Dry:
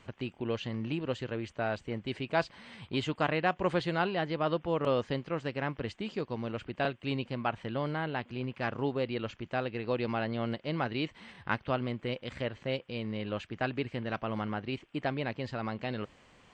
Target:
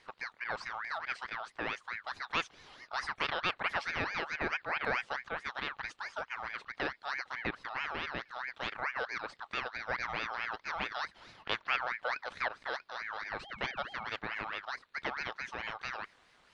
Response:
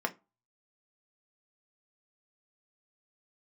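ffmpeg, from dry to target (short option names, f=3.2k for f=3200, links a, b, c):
-filter_complex "[0:a]asettb=1/sr,asplit=3[a][b][c];[a]atrim=end=11.114[d];[b]atrim=start=11.11:end=12.56,asetpts=PTS-STARTPTS,afade=t=in:d=0.004:c=qsin,afade=t=out:st=1.446:d=0.004:c=qsin,equalizer=f=450:w=1.2:g=7[e];[c]atrim=start=12.556[f];[d][e]acrossfade=d=0.004:c1=hsin:c2=qsin[g];[g][f]acrossfade=d=0.004:c1=qsin:c2=hsin,asettb=1/sr,asplit=3[h][i][j];[h]atrim=end=13.394[k];[i]atrim=start=13.39:end=14.05,asetpts=PTS-STARTPTS,afade=t=in:d=0.004:c=qsin,afade=t=out:st=0.656:d=0.004:c=qsin,aeval=exprs='val(0)+0.00708*sin(2*PI*1200*n/s)':c=same[l];[j]atrim=start=14.046[m];[k][l]acrossfade=d=0.004:c1=hsin:c2=qsin[n];[n][m]acrossfade=d=0.004:c1=qsin:c2=hsin,aeval=exprs='val(0)*sin(2*PI*1500*n/s+1500*0.35/4.6*sin(2*PI*4.6*n/s))':c=same,volume=-2dB"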